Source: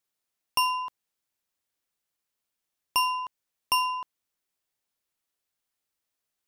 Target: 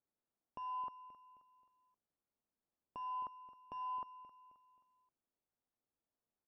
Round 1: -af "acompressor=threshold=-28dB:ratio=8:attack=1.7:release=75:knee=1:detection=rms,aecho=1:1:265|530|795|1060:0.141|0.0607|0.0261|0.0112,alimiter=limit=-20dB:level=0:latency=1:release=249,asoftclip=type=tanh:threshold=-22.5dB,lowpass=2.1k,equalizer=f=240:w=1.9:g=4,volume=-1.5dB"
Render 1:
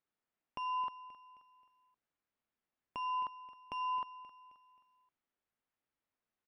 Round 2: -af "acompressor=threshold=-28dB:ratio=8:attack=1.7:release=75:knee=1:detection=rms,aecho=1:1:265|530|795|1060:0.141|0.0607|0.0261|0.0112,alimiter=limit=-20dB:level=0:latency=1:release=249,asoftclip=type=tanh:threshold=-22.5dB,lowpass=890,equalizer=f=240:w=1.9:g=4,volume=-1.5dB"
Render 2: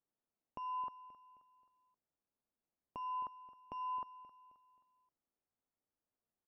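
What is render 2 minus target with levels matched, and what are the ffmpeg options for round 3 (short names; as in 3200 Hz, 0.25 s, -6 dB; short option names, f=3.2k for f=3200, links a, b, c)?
soft clip: distortion -12 dB
-af "acompressor=threshold=-28dB:ratio=8:attack=1.7:release=75:knee=1:detection=rms,aecho=1:1:265|530|795|1060:0.141|0.0607|0.0261|0.0112,alimiter=limit=-20dB:level=0:latency=1:release=249,asoftclip=type=tanh:threshold=-30dB,lowpass=890,equalizer=f=240:w=1.9:g=4,volume=-1.5dB"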